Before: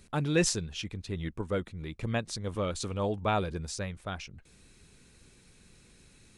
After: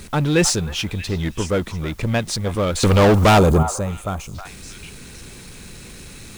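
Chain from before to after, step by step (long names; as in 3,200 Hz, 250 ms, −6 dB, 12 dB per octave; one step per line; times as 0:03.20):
power curve on the samples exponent 0.7
in parallel at −9 dB: bit-depth reduction 8 bits, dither triangular
0:02.83–0:03.63: on the sum: leveller curve on the samples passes 3
echo through a band-pass that steps 315 ms, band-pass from 1,000 Hz, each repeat 1.4 octaves, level −8 dB
0:03.38–0:04.35: gain on a spectral selection 1,400–6,100 Hz −11 dB
level +3.5 dB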